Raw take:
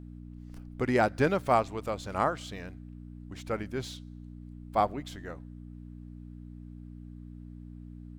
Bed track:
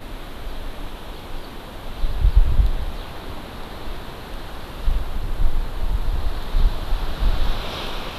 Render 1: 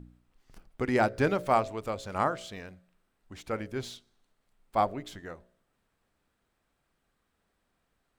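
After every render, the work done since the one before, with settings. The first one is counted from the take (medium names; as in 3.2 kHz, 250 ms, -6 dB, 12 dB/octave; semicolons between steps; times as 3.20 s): de-hum 60 Hz, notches 11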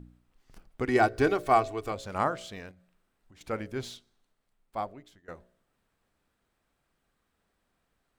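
0.88–1.92 s: comb 2.7 ms; 2.71–3.41 s: compression, threshold -54 dBFS; 3.93–5.28 s: fade out, to -21 dB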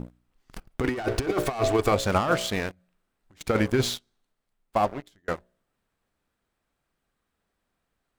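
waveshaping leveller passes 3; compressor with a negative ratio -22 dBFS, ratio -0.5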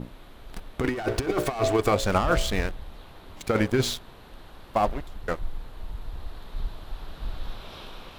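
add bed track -13.5 dB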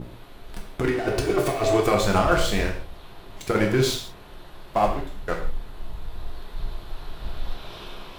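gated-style reverb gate 190 ms falling, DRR 0.5 dB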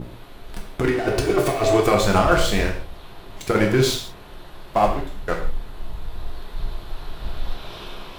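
trim +3 dB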